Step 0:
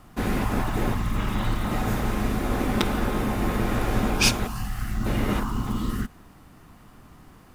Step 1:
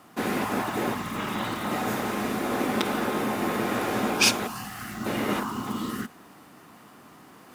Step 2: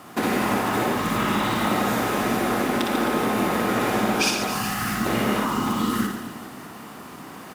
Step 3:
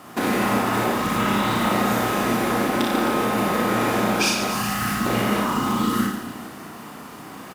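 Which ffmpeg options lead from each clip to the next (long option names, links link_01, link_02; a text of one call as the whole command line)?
ffmpeg -i in.wav -af "highpass=240,areverse,acompressor=mode=upward:threshold=-46dB:ratio=2.5,areverse,alimiter=level_in=8dB:limit=-1dB:release=50:level=0:latency=1,volume=-6.5dB" out.wav
ffmpeg -i in.wav -af "acompressor=threshold=-30dB:ratio=6,aecho=1:1:60|144|261.6|426.2|656.7:0.631|0.398|0.251|0.158|0.1,volume=8.5dB" out.wav
ffmpeg -i in.wav -filter_complex "[0:a]asplit=2[link_01][link_02];[link_02]adelay=34,volume=-4.5dB[link_03];[link_01][link_03]amix=inputs=2:normalize=0" out.wav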